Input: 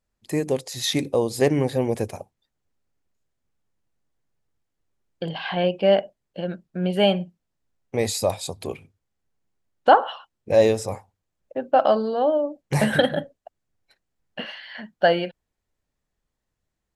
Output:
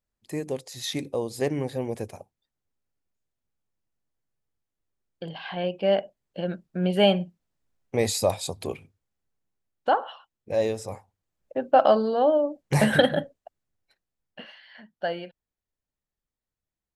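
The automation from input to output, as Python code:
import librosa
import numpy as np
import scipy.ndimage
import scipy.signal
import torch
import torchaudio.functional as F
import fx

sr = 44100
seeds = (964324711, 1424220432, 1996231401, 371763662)

y = fx.gain(x, sr, db=fx.line((5.57, -7.0), (6.48, -0.5), (8.63, -0.5), (9.9, -8.0), (10.7, -8.0), (11.58, 0.0), (13.18, 0.0), (14.5, -11.0)))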